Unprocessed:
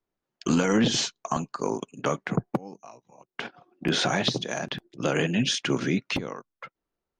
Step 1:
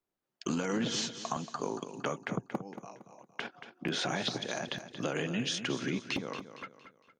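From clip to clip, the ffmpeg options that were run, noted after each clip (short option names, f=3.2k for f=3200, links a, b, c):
-filter_complex "[0:a]lowshelf=f=62:g=-11,acompressor=threshold=-29dB:ratio=2.5,asplit=2[a][b];[b]aecho=0:1:230|460|690|920:0.282|0.11|0.0429|0.0167[c];[a][c]amix=inputs=2:normalize=0,volume=-3dB"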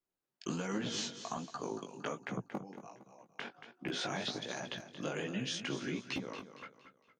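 -af "flanger=delay=15:depth=6.1:speed=1.3,volume=-1.5dB"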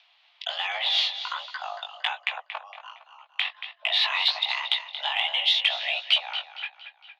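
-af "acompressor=mode=upward:threshold=-55dB:ratio=2.5,highpass=f=410:t=q:w=0.5412,highpass=f=410:t=q:w=1.307,lowpass=f=3.3k:t=q:w=0.5176,lowpass=f=3.3k:t=q:w=0.7071,lowpass=f=3.3k:t=q:w=1.932,afreqshift=320,aexciter=amount=3.4:drive=8.8:freq=2.3k,volume=8dB"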